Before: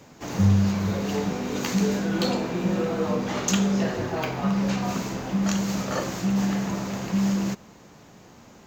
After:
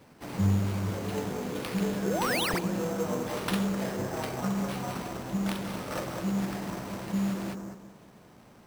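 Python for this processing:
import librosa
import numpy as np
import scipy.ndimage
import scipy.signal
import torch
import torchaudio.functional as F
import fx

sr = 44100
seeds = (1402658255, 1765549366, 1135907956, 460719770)

p1 = fx.self_delay(x, sr, depth_ms=0.32)
p2 = fx.spec_paint(p1, sr, seeds[0], shape='rise', start_s=2.05, length_s=0.54, low_hz=320.0, high_hz=9700.0, level_db=-25.0)
p3 = p2 + fx.echo_bbd(p2, sr, ms=200, stages=2048, feedback_pct=30, wet_db=-5, dry=0)
p4 = fx.sample_hold(p3, sr, seeds[1], rate_hz=6900.0, jitter_pct=0)
y = F.gain(torch.from_numpy(p4), -6.0).numpy()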